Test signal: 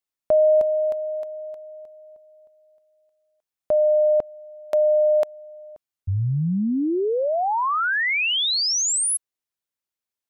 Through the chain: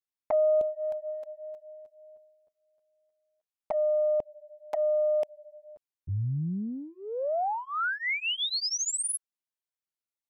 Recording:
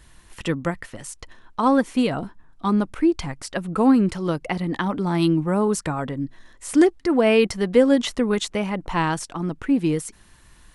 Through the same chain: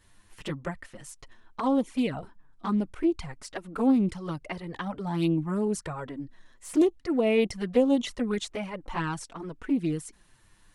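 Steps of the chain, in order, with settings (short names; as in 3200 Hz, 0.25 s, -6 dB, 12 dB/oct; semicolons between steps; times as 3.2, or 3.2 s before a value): envelope flanger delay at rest 11.1 ms, full sweep at -15 dBFS; Doppler distortion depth 0.15 ms; gain -5.5 dB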